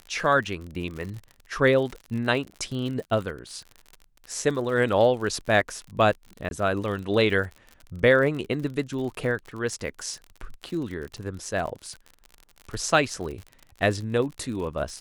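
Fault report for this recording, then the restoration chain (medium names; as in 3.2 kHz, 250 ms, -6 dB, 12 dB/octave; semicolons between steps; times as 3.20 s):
crackle 53 per s -33 dBFS
6.49–6.51 s: dropout 21 ms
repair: de-click; interpolate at 6.49 s, 21 ms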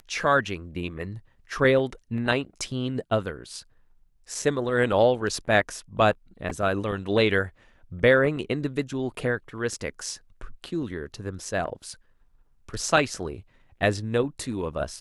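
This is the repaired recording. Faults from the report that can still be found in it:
nothing left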